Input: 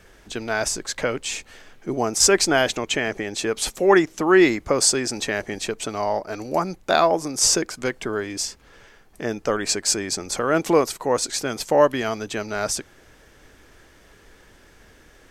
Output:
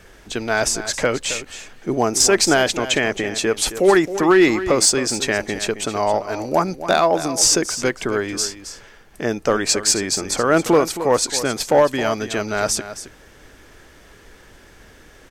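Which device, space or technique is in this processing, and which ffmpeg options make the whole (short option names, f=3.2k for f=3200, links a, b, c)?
limiter into clipper: -af "alimiter=limit=-8dB:level=0:latency=1:release=273,asoftclip=type=hard:threshold=-11dB,aecho=1:1:268:0.237,volume=4.5dB"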